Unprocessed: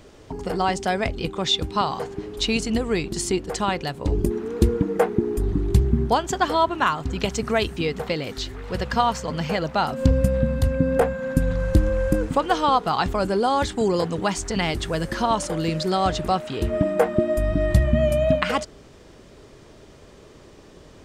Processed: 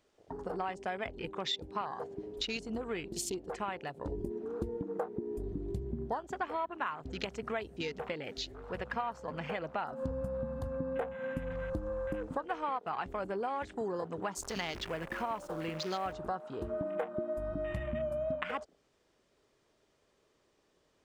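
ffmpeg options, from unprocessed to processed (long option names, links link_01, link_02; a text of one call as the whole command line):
ffmpeg -i in.wav -filter_complex "[0:a]asettb=1/sr,asplit=3[link_01][link_02][link_03];[link_01]atrim=end=14.374[link_04];[link_02]atrim=start=14.37:end=16.13,asetpts=PTS-STARTPTS,afade=type=in:duration=0.004:curve=qsin,afade=type=out:start_time=1.756:duration=0.004:curve=qsin,acrusher=bits=6:dc=4:mix=0:aa=0.000001[link_05];[link_03]atrim=start=16.126[link_06];[link_04][link_05]acrossfade=duration=0.004:curve1=hsin:curve2=qsin[link_07];[link_07][link_06]acrossfade=duration=0.004:curve1=qsin:curve2=hsin,lowshelf=frequency=290:gain=-11.5,acompressor=threshold=-30dB:ratio=3,afwtdn=0.0112,volume=-4.5dB" out.wav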